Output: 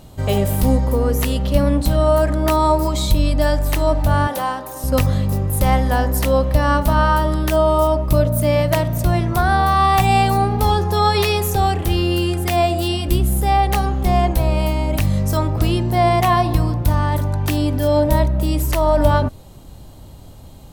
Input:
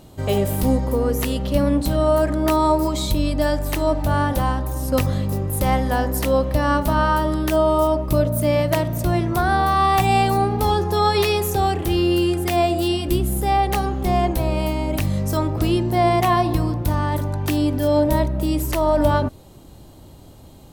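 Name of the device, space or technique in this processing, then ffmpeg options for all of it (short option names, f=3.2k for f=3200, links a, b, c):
low shelf boost with a cut just above: -filter_complex "[0:a]lowshelf=f=63:g=7,equalizer=f=340:t=o:w=0.65:g=-5,asettb=1/sr,asplit=3[a][b][c];[a]atrim=end=4.274[d];[b]atrim=start=4.27:end=4.84,asetpts=PTS-STARTPTS,afade=t=in:d=0.004:c=qsin,afade=t=out:st=0.566:d=0.004:c=qsin,highpass=340[e];[c]atrim=start=4.836[f];[d][e]acrossfade=d=0.004:c1=hsin:c2=qsin[g];[g][f]acrossfade=d=0.004:c1=qsin:c2=hsin,volume=2.5dB"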